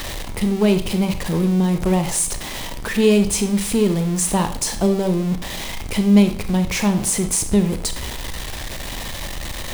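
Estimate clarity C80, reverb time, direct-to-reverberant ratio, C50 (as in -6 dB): 14.5 dB, 0.55 s, 7.5 dB, 10.5 dB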